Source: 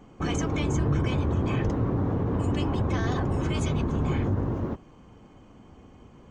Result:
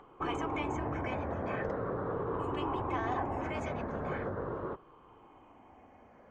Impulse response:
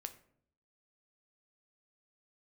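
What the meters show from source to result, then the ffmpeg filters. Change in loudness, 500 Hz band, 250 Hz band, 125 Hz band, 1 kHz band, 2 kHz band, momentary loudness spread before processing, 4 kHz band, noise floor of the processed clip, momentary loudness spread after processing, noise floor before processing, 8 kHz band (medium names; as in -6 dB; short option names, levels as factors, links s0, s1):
-8.5 dB, -3.5 dB, -10.5 dB, -15.5 dB, 0.0 dB, -3.0 dB, 4 LU, -10.5 dB, -59 dBFS, 4 LU, -52 dBFS, under -15 dB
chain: -filter_complex "[0:a]afftfilt=real='re*pow(10,7/40*sin(2*PI*(0.64*log(max(b,1)*sr/1024/100)/log(2)-(-0.41)*(pts-256)/sr)))':imag='im*pow(10,7/40*sin(2*PI*(0.64*log(max(b,1)*sr/1024/100)/log(2)-(-0.41)*(pts-256)/sr)))':win_size=1024:overlap=0.75,acrossover=split=430 2200:gain=0.158 1 0.1[s0][s1][s2];[s0][s1][s2]amix=inputs=3:normalize=0,acompressor=mode=upward:threshold=0.002:ratio=2.5"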